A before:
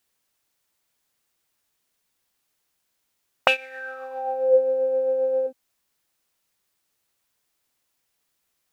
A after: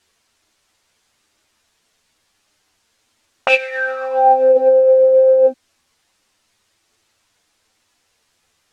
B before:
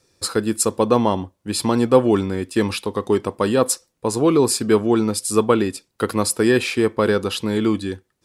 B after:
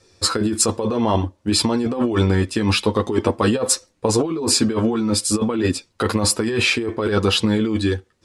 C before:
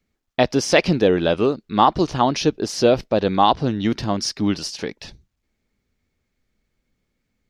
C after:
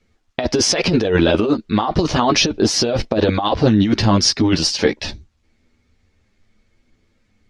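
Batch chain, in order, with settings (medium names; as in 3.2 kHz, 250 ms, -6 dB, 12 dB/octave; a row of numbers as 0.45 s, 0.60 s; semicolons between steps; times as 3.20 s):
chorus voices 4, 0.27 Hz, delay 11 ms, depth 2.2 ms; low-pass 7.5 kHz 12 dB/octave; compressor with a negative ratio -25 dBFS, ratio -1; peak normalisation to -1.5 dBFS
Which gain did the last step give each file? +15.0 dB, +6.5 dB, +10.0 dB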